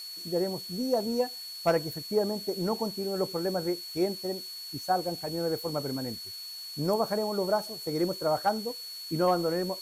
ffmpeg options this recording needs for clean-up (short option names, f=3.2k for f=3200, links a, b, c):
-af "bandreject=f=4.4k:w=30,afftdn=nr=30:nf=-41"